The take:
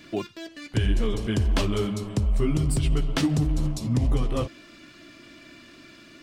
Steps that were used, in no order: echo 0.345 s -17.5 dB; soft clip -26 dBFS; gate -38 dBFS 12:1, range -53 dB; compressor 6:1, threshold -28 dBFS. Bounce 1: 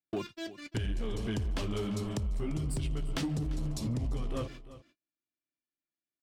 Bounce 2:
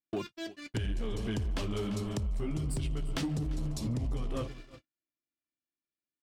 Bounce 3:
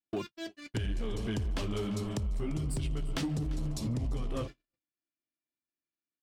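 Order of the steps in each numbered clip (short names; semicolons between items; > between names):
gate > compressor > echo > soft clip; echo > compressor > gate > soft clip; compressor > echo > soft clip > gate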